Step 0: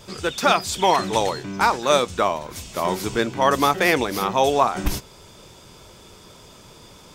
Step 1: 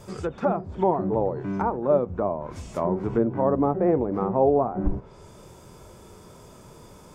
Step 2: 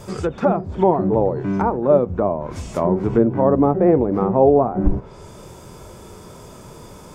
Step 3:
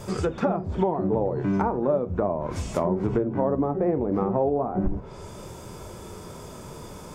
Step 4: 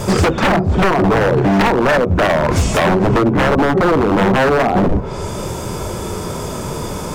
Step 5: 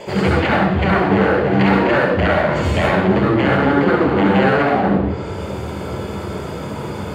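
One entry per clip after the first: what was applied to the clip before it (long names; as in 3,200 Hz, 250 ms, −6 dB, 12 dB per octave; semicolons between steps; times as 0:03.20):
treble cut that deepens with the level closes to 640 Hz, closed at −18.5 dBFS; parametric band 3,700 Hz −13.5 dB 1.8 octaves; harmonic and percussive parts rebalanced percussive −7 dB; level +3.5 dB
dynamic equaliser 1,100 Hz, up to −3 dB, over −36 dBFS, Q 0.76; level +7.5 dB
downward compressor 5 to 1, threshold −20 dBFS, peak gain reduction 10.5 dB; flanger 0.36 Hz, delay 9.5 ms, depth 4.6 ms, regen −77%; level +4 dB
in parallel at +1 dB: speech leveller 0.5 s; on the sum: wave folding −16.5 dBFS; level +9 dB
convolution reverb RT60 0.85 s, pre-delay 67 ms, DRR −3 dB; level −16 dB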